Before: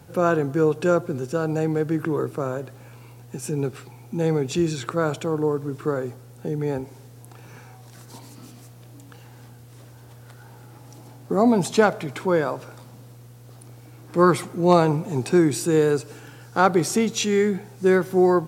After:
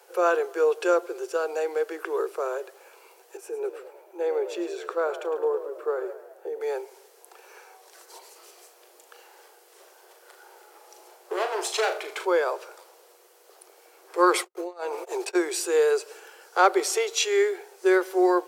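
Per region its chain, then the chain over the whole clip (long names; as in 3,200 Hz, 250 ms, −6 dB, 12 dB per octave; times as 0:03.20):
0:03.37–0:06.61: parametric band 6,500 Hz −12.5 dB 3 octaves + echo with shifted repeats 107 ms, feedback 51%, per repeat +51 Hz, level −12.5 dB
0:08.30–0:12.25: gain into a clipping stage and back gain 20.5 dB + flutter between parallel walls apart 6.7 metres, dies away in 0.3 s
0:14.33–0:15.35: compressor whose output falls as the input rises −24 dBFS + noise gate −28 dBFS, range −55 dB
whole clip: Butterworth high-pass 360 Hz 96 dB per octave; notch filter 3,700 Hz, Q 23; dynamic equaliser 3,200 Hz, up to +3 dB, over −43 dBFS, Q 0.78; level −1 dB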